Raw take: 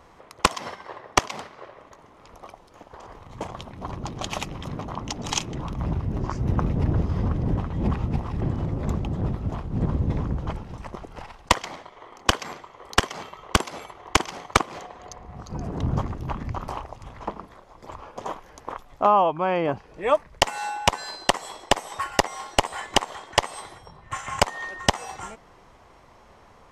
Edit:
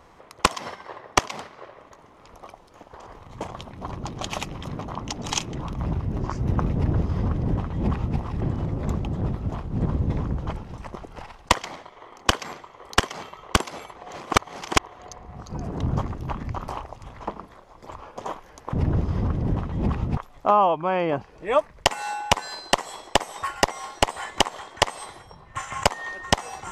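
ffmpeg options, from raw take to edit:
-filter_complex "[0:a]asplit=5[a][b][c][d][e];[a]atrim=end=13.962[f];[b]atrim=start=13.958:end=14.972,asetpts=PTS-STARTPTS,areverse[g];[c]atrim=start=14.968:end=18.732[h];[d]atrim=start=6.738:end=8.182[i];[e]atrim=start=18.728[j];[f][g]acrossfade=d=0.004:c1=hsin:c2=hsin[k];[k][h]acrossfade=d=0.004:c1=hsin:c2=hsin[l];[l][i]acrossfade=d=0.004:c1=hsin:c2=hsin[m];[m][j]acrossfade=d=0.004:c1=hsin:c2=hsin"

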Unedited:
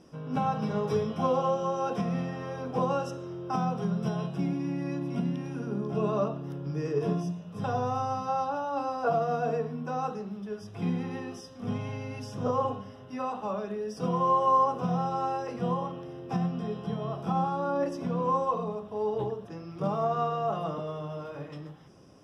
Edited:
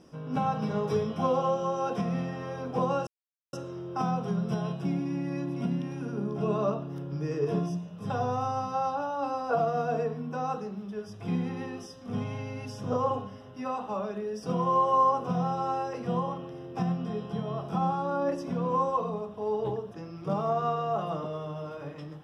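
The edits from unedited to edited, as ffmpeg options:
-filter_complex "[0:a]asplit=2[a][b];[a]atrim=end=3.07,asetpts=PTS-STARTPTS,afade=t=out:st=3.066:d=0.004:c=hsin,apad=pad_dur=0.46[c];[b]atrim=start=3.07,asetpts=PTS-STARTPTS,afade=t=in:d=0.004:c=hsin[d];[c][d]concat=n=2:v=0:a=1"

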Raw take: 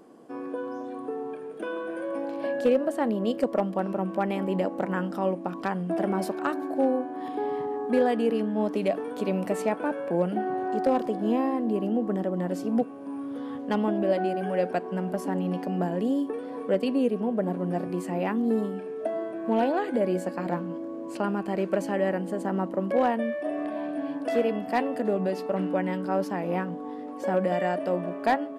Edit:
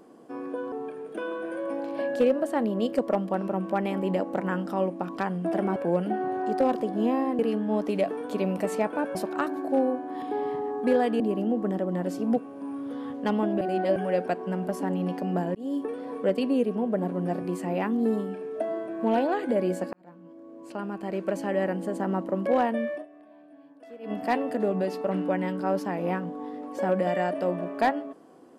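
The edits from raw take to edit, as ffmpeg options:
-filter_complex "[0:a]asplit=12[a][b][c][d][e][f][g][h][i][j][k][l];[a]atrim=end=0.722[m];[b]atrim=start=1.168:end=6.212[n];[c]atrim=start=10.018:end=11.652[o];[d]atrim=start=8.258:end=10.022[p];[e]atrim=start=6.208:end=8.262[q];[f]atrim=start=11.648:end=14.062[r];[g]atrim=start=14.058:end=14.412,asetpts=PTS-STARTPTS,areverse[s];[h]atrim=start=14.408:end=16,asetpts=PTS-STARTPTS,afade=t=out:st=1.588:d=0.004:c=hsin[t];[i]atrim=start=16:end=20.38,asetpts=PTS-STARTPTS,afade=t=in:d=0.25,afade=t=out:st=4.376:d=0.004:c=hsin[u];[j]atrim=start=20.38:end=23.53,asetpts=PTS-STARTPTS,afade=t=in:d=1.79,afade=t=out:st=3.02:d=0.13:c=qua:silence=0.0944061[v];[k]atrim=start=23.53:end=24.44,asetpts=PTS-STARTPTS,volume=-20.5dB[w];[l]atrim=start=24.44,asetpts=PTS-STARTPTS,afade=t=in:d=0.13:c=qua:silence=0.0944061[x];[m][n]acrossfade=d=0.004:c1=hsin:c2=hsin[y];[y][o]acrossfade=d=0.004:c1=hsin:c2=hsin[z];[z][p]acrossfade=d=0.004:c1=hsin:c2=hsin[aa];[aa][q]acrossfade=d=0.004:c1=hsin:c2=hsin[ab];[ab][r]acrossfade=d=0.004:c1=hsin:c2=hsin[ac];[ac][s]acrossfade=d=0.004:c1=hsin:c2=hsin[ad];[t][u][v][w][x]concat=n=5:v=0:a=1[ae];[ad][ae]acrossfade=d=0.004:c1=hsin:c2=hsin"

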